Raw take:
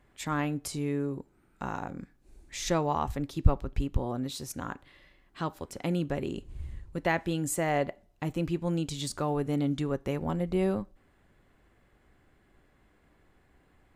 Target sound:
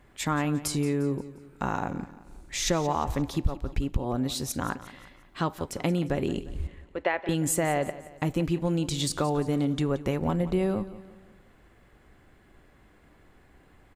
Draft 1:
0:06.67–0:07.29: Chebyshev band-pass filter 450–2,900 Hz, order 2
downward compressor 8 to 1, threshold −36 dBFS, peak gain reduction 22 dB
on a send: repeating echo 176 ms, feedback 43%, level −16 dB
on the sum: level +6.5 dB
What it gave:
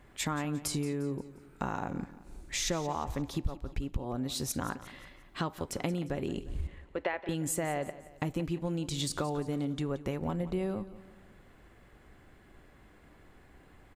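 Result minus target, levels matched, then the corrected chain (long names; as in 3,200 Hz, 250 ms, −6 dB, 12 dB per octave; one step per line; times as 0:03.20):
downward compressor: peak gain reduction +7 dB
0:06.67–0:07.29: Chebyshev band-pass filter 450–2,900 Hz, order 2
downward compressor 8 to 1, threshold −28 dBFS, peak gain reduction 15 dB
on a send: repeating echo 176 ms, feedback 43%, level −16 dB
on the sum: level +6.5 dB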